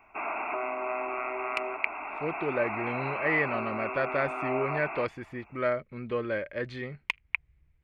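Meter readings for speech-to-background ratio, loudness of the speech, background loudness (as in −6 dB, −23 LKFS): 1.5 dB, −32.5 LKFS, −34.0 LKFS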